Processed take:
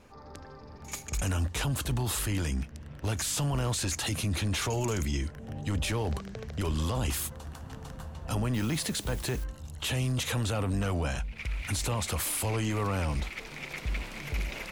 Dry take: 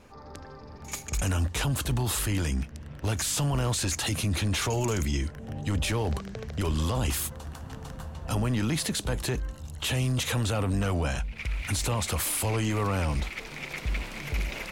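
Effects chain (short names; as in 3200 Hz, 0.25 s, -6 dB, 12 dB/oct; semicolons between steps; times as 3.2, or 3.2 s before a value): 8.54–9.44 requantised 8-bit, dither triangular; gain -2.5 dB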